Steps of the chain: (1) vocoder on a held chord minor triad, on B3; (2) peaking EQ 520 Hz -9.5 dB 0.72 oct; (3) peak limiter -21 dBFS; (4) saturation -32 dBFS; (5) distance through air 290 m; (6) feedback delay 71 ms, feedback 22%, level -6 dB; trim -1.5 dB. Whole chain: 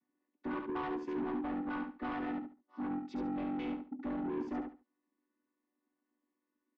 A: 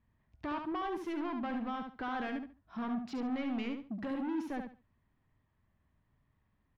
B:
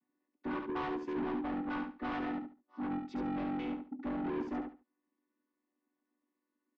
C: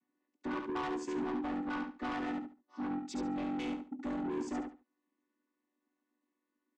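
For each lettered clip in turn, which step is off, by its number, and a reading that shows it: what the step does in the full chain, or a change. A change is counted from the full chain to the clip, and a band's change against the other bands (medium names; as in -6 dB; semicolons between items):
1, 4 kHz band +5.5 dB; 3, mean gain reduction 2.5 dB; 5, 4 kHz band +6.0 dB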